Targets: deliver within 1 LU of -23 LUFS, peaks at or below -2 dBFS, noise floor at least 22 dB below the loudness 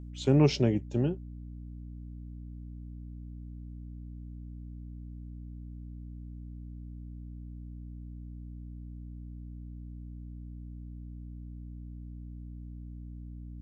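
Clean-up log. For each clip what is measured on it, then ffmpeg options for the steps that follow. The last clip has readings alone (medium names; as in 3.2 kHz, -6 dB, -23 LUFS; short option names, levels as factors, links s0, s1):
hum 60 Hz; highest harmonic 300 Hz; hum level -40 dBFS; loudness -37.0 LUFS; peak level -11.5 dBFS; loudness target -23.0 LUFS
-> -af "bandreject=f=60:t=h:w=4,bandreject=f=120:t=h:w=4,bandreject=f=180:t=h:w=4,bandreject=f=240:t=h:w=4,bandreject=f=300:t=h:w=4"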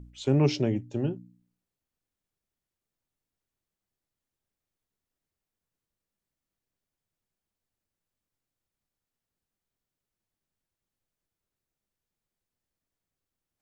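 hum not found; loudness -27.0 LUFS; peak level -13.5 dBFS; loudness target -23.0 LUFS
-> -af "volume=1.58"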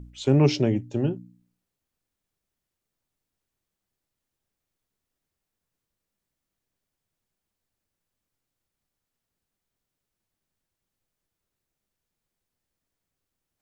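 loudness -23.5 LUFS; peak level -9.5 dBFS; noise floor -85 dBFS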